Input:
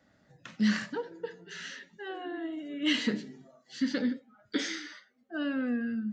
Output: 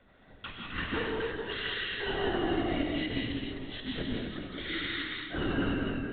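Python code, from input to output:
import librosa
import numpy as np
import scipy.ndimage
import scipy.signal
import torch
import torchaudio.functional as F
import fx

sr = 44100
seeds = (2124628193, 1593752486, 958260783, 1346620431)

p1 = fx.fade_out_tail(x, sr, length_s=1.15)
p2 = fx.high_shelf(p1, sr, hz=2900.0, db=8.0)
p3 = fx.notch(p2, sr, hz=1700.0, q=15.0)
p4 = fx.over_compress(p3, sr, threshold_db=-34.0, ratio=-0.5)
p5 = p4 + fx.echo_feedback(p4, sr, ms=261, feedback_pct=34, wet_db=-4.5, dry=0)
p6 = fx.lpc_vocoder(p5, sr, seeds[0], excitation='whisper', order=16)
p7 = fx.peak_eq(p6, sr, hz=1100.0, db=4.0, octaves=0.38)
y = fx.rev_gated(p7, sr, seeds[1], gate_ms=220, shape='rising', drr_db=-0.5)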